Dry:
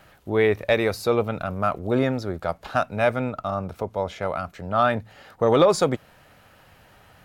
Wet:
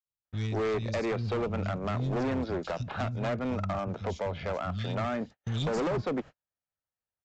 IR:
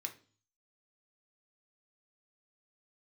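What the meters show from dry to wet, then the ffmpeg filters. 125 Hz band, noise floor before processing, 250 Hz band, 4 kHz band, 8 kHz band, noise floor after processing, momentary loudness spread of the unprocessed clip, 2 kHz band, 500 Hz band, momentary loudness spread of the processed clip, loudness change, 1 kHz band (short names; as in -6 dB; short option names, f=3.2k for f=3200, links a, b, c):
-1.5 dB, -54 dBFS, -5.5 dB, -7.5 dB, -12.0 dB, under -85 dBFS, 11 LU, -10.0 dB, -10.0 dB, 5 LU, -8.5 dB, -10.0 dB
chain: -filter_complex "[0:a]acrossover=split=190|3500[a][b][c];[a]adelay=50[d];[b]adelay=250[e];[d][e][c]amix=inputs=3:normalize=0,acrossover=split=340[f][g];[g]acompressor=threshold=-30dB:ratio=10[h];[f][h]amix=inputs=2:normalize=0,aresample=16000,volume=28.5dB,asoftclip=hard,volume=-28.5dB,aresample=44100,agate=range=-48dB:threshold=-43dB:ratio=16:detection=peak,volume=1.5dB"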